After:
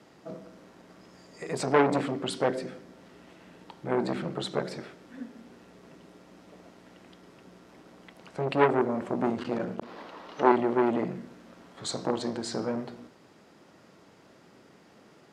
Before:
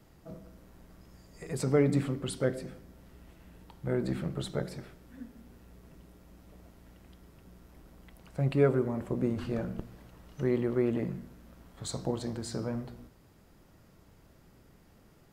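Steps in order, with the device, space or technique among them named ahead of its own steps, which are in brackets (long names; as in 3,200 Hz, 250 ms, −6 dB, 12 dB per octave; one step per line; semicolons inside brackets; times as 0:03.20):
public-address speaker with an overloaded transformer (saturating transformer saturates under 1,000 Hz; band-pass filter 240–6,500 Hz)
0:09.83–0:10.52: graphic EQ with 10 bands 125 Hz −11 dB, 250 Hz +4 dB, 500 Hz +4 dB, 1,000 Hz +10 dB, 2,000 Hz +3 dB, 4,000 Hz +7 dB, 8,000 Hz −5 dB
level +8 dB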